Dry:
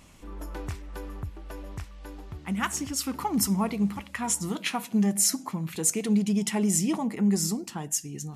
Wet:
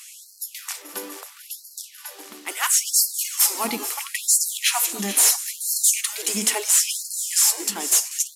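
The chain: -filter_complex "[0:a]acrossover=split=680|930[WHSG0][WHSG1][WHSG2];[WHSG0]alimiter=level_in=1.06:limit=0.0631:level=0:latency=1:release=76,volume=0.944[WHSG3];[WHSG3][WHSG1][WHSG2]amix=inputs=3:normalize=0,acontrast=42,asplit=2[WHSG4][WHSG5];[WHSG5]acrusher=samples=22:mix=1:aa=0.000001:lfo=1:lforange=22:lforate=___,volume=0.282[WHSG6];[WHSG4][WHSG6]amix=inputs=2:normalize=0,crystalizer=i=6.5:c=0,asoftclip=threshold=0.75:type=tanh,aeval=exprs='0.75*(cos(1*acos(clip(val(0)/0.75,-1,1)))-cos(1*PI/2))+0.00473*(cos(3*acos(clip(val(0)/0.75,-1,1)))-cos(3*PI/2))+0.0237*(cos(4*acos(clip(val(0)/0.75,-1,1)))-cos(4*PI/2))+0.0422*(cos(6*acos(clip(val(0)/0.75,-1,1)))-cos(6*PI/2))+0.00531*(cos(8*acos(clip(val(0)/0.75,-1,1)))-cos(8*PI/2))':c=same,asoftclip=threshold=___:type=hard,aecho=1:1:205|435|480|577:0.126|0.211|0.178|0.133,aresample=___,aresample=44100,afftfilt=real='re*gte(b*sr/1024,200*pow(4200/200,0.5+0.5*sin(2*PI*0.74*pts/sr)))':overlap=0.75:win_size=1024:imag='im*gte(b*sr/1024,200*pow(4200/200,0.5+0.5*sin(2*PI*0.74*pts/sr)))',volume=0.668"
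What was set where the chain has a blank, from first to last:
0.56, 0.299, 32000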